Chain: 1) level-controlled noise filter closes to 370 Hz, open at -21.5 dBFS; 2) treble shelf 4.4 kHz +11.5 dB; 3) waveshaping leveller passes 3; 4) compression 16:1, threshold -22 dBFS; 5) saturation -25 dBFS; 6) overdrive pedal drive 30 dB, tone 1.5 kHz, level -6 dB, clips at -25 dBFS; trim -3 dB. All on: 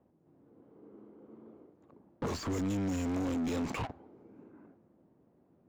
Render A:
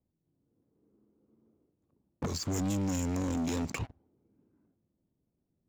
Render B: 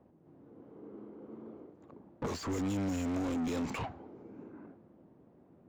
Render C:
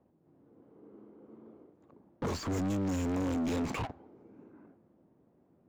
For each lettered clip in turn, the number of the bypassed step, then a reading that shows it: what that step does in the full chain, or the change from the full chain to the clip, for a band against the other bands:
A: 6, 8 kHz band +7.5 dB; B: 3, loudness change -1.5 LU; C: 4, mean gain reduction 7.5 dB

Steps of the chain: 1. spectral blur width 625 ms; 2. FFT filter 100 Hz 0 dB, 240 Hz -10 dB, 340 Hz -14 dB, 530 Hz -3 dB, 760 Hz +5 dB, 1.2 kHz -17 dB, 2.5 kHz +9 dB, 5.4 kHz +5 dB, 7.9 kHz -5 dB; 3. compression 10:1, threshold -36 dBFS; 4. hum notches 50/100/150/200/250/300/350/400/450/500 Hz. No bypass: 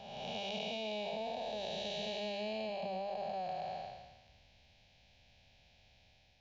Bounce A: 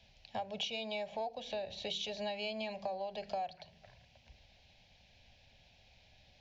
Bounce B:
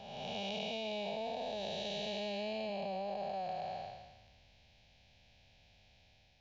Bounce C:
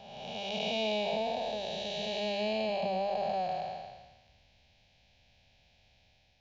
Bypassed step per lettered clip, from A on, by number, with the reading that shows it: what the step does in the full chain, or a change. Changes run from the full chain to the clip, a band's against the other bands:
1, 4 kHz band +2.0 dB; 4, 125 Hz band +1.5 dB; 3, mean gain reduction 3.5 dB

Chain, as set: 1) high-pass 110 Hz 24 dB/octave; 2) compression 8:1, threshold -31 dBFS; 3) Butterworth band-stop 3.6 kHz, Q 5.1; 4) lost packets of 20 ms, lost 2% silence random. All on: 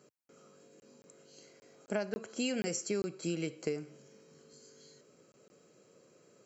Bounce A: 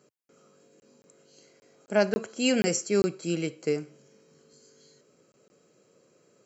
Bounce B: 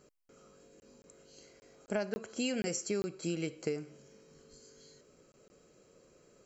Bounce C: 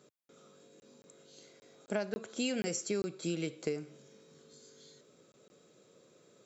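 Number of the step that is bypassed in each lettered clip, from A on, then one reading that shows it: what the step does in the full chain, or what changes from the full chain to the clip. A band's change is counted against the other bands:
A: 2, mean gain reduction 4.5 dB; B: 1, crest factor change -2.0 dB; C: 3, momentary loudness spread change +9 LU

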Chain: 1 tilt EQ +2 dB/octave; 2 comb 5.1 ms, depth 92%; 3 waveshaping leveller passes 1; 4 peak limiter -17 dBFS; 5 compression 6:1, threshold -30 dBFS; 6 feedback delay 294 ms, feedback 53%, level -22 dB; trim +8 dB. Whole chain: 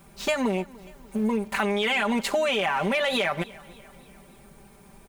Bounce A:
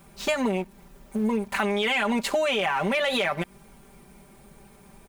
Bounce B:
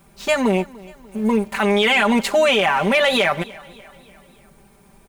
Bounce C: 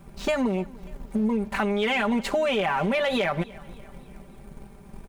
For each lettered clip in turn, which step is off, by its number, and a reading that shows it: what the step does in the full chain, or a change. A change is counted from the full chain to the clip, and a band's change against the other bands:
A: 6, echo-to-direct -20.5 dB to none; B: 5, mean gain reduction 4.0 dB; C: 1, 8 kHz band -6.0 dB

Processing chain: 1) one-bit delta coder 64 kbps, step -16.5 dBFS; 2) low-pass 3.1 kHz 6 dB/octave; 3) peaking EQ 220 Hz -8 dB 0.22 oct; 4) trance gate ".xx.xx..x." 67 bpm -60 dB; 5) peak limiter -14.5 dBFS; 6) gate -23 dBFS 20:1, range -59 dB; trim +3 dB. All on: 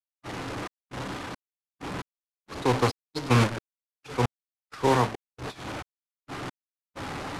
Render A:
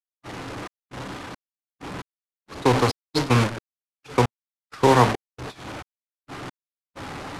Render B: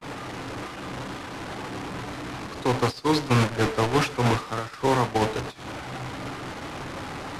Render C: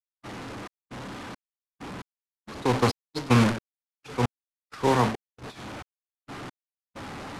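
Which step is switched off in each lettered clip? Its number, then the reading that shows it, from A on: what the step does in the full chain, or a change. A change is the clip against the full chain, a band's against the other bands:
5, crest factor change +4.5 dB; 4, crest factor change -3.0 dB; 3, 250 Hz band +3.0 dB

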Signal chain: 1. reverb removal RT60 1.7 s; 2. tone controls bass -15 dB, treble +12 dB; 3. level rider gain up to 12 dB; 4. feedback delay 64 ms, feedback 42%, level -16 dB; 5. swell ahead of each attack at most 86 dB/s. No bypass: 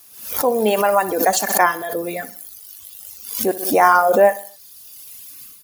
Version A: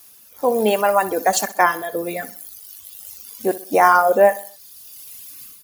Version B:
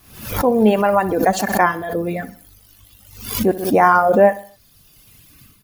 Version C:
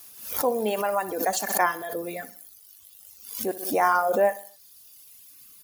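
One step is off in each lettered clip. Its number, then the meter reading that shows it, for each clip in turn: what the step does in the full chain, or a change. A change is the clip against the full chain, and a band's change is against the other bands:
5, 8 kHz band -2.5 dB; 2, 125 Hz band +11.0 dB; 3, momentary loudness spread change -7 LU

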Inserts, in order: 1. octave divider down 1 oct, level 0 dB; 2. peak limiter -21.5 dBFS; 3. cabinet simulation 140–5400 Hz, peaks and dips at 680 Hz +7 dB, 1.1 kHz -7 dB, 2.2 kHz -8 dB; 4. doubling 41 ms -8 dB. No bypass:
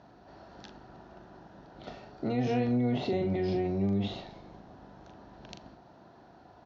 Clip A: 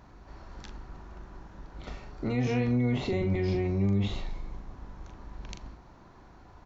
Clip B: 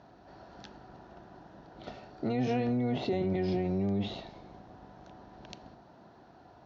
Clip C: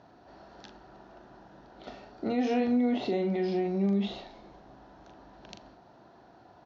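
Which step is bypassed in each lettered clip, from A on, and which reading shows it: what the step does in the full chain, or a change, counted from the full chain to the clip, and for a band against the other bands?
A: 3, 125 Hz band +4.5 dB; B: 4, momentary loudness spread change -1 LU; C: 1, 125 Hz band -6.0 dB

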